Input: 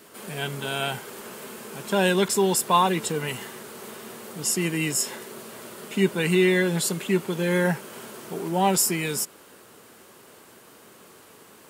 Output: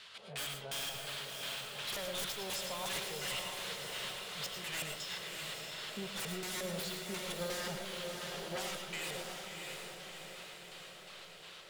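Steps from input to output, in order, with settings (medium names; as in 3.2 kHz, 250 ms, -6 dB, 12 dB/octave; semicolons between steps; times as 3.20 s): amplifier tone stack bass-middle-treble 10-0-10; compression 3:1, threshold -34 dBFS, peak gain reduction 12 dB; LFO low-pass square 2.8 Hz 570–3700 Hz; wavefolder -36.5 dBFS; tremolo 2.7 Hz, depth 37%; echo that smears into a reverb 660 ms, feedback 59%, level -4 dB; reverberation RT60 0.30 s, pre-delay 65 ms, DRR 4.5 dB; trim +2.5 dB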